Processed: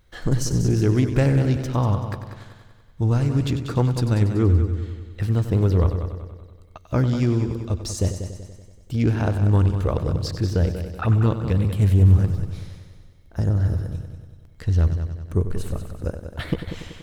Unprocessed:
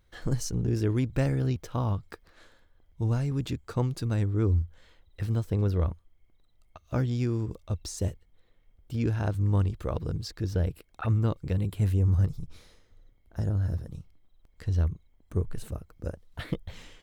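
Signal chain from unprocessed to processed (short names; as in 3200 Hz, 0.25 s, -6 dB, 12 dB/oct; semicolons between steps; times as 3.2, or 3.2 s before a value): multi-head echo 95 ms, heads first and second, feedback 51%, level -11.5 dB; Doppler distortion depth 0.26 ms; gain +7 dB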